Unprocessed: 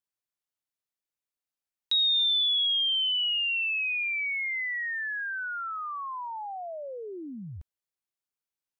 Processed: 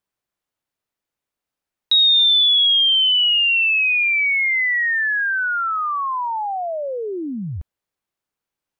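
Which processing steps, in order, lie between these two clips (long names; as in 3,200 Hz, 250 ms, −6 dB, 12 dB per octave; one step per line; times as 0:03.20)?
in parallel at −3 dB: brickwall limiter −29 dBFS, peak gain reduction 8.5 dB
on the sum: one half of a high-frequency compander decoder only
level +8 dB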